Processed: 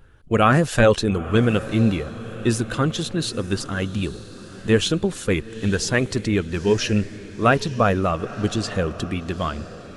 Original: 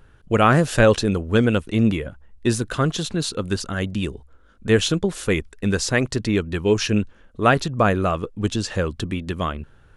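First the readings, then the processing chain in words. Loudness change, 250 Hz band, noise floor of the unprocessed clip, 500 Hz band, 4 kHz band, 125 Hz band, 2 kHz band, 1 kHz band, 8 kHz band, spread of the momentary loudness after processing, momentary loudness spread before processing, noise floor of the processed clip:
-0.5 dB, -0.5 dB, -52 dBFS, -0.5 dB, -0.5 dB, 0.0 dB, -0.5 dB, -0.5 dB, -1.0 dB, 11 LU, 11 LU, -40 dBFS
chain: coarse spectral quantiser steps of 15 dB; echo that smears into a reverb 914 ms, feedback 45%, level -15.5 dB

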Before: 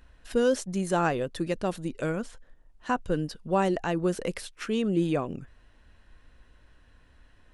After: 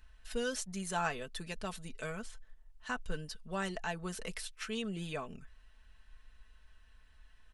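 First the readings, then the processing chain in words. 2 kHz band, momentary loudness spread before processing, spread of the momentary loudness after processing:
-4.0 dB, 9 LU, 8 LU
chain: peaking EQ 300 Hz -13.5 dB 2.8 oct; comb 4.6 ms, depth 62%; trim -3.5 dB

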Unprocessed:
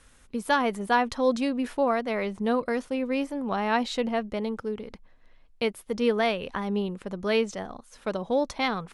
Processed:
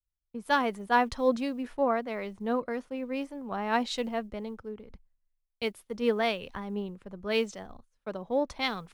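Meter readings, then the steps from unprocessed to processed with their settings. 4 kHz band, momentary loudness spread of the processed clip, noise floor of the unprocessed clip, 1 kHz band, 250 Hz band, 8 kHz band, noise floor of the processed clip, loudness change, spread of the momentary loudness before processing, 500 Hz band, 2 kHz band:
-2.0 dB, 14 LU, -56 dBFS, -2.5 dB, -4.5 dB, -4.5 dB, -82 dBFS, -3.0 dB, 9 LU, -3.5 dB, -3.0 dB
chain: gate -45 dBFS, range -12 dB; treble shelf 8 kHz -5 dB; in parallel at -1 dB: compression 5:1, threshold -37 dBFS, peak gain reduction 17 dB; on the sum: companded quantiser 8-bit; three bands expanded up and down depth 100%; trim -6 dB

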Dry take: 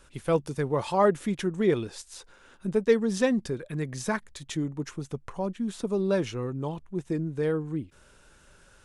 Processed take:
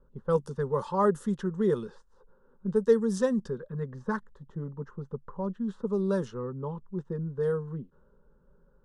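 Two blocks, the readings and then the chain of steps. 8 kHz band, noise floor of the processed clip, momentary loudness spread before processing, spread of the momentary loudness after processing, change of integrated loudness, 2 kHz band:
-9.0 dB, -63 dBFS, 13 LU, 14 LU, -1.5 dB, -7.0 dB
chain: dynamic bell 4.1 kHz, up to -5 dB, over -51 dBFS, Q 1.3; static phaser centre 460 Hz, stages 8; level-controlled noise filter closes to 540 Hz, open at -22.5 dBFS

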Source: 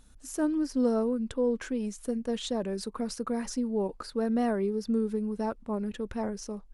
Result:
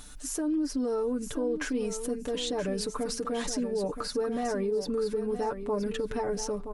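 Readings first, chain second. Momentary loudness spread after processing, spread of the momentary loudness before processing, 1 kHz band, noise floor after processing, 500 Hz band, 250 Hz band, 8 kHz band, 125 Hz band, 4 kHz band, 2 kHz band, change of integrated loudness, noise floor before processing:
3 LU, 7 LU, +1.5 dB, -41 dBFS, +1.5 dB, -3.0 dB, +6.0 dB, no reading, +5.0 dB, +3.5 dB, 0.0 dB, -53 dBFS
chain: comb 6.8 ms, depth 74%; in parallel at 0 dB: compression, threshold -33 dBFS, peak gain reduction 13.5 dB; on the sum: peak limiter -23.5 dBFS, peak gain reduction 11.5 dB; feedback delay 973 ms, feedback 19%, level -9.5 dB; tape noise reduction on one side only encoder only

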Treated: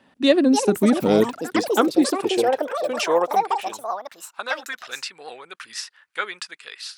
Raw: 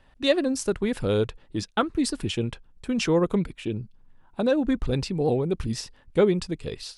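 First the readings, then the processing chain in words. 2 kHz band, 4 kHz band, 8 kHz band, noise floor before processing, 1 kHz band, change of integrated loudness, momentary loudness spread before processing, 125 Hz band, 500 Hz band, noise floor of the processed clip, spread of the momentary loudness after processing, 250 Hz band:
+6.5 dB, +4.0 dB, +5.0 dB, -58 dBFS, +11.0 dB, +4.5 dB, 11 LU, -7.0 dB, +3.5 dB, -59 dBFS, 17 LU, +4.0 dB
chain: ever faster or slower copies 378 ms, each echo +7 st, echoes 3, each echo -6 dB; high-pass sweep 220 Hz -> 1.5 kHz, 1.09–4.73 s; trim +3 dB

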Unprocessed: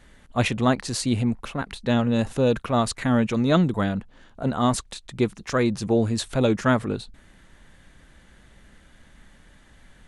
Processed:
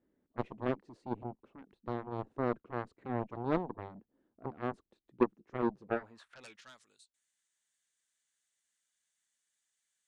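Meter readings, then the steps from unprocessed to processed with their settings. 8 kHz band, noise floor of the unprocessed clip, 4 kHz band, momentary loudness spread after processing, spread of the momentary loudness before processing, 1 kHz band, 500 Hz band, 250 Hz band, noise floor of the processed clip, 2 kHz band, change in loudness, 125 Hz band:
under -30 dB, -54 dBFS, -27.5 dB, 20 LU, 10 LU, -12.0 dB, -13.0 dB, -16.0 dB, -84 dBFS, -16.5 dB, -14.0 dB, -19.5 dB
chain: band-pass sweep 330 Hz -> 7.5 kHz, 5.71–6.90 s; Chebyshev shaper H 3 -11 dB, 5 -42 dB, 7 -24 dB, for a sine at -14 dBFS

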